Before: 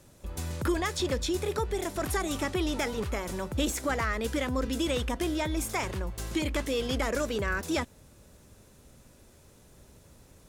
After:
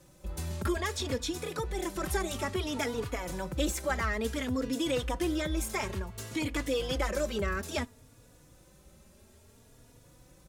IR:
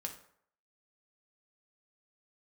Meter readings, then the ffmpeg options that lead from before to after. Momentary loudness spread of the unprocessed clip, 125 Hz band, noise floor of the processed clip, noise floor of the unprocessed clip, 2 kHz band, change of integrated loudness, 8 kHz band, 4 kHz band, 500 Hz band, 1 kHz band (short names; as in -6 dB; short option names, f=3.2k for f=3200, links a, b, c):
4 LU, -2.0 dB, -59 dBFS, -57 dBFS, -2.0 dB, -2.0 dB, -2.0 dB, -2.0 dB, -2.0 dB, -2.5 dB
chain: -filter_complex "[0:a]asplit=2[a][b];[1:a]atrim=start_sample=2205,atrim=end_sample=3528[c];[b][c]afir=irnorm=-1:irlink=0,volume=-14.5dB[d];[a][d]amix=inputs=2:normalize=0,asplit=2[e][f];[f]adelay=3.5,afreqshift=0.58[g];[e][g]amix=inputs=2:normalize=1"